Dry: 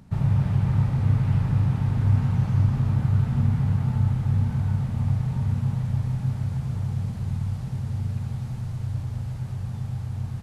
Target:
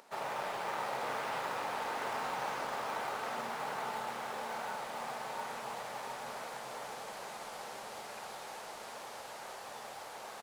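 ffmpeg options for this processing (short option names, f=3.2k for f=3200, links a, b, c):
-filter_complex "[0:a]highpass=f=490:w=0.5412,highpass=f=490:w=1.3066,asplit=2[a][b];[b]acrusher=samples=12:mix=1:aa=0.000001:lfo=1:lforange=7.2:lforate=2.3,volume=-11dB[c];[a][c]amix=inputs=2:normalize=0,aecho=1:1:705:0.501,volume=3.5dB"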